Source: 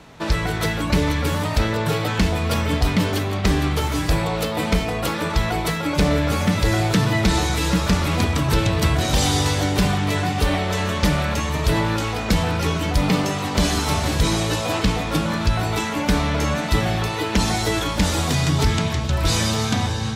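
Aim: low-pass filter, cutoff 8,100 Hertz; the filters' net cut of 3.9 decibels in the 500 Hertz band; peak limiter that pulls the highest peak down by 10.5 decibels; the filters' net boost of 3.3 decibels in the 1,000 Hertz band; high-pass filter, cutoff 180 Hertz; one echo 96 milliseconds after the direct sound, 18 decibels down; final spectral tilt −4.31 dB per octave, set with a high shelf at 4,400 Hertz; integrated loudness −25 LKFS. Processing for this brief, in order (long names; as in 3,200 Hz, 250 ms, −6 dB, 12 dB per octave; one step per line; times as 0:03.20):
high-pass filter 180 Hz
low-pass filter 8,100 Hz
parametric band 500 Hz −7 dB
parametric band 1,000 Hz +6.5 dB
high-shelf EQ 4,400 Hz −4 dB
brickwall limiter −17 dBFS
single-tap delay 96 ms −18 dB
level +0.5 dB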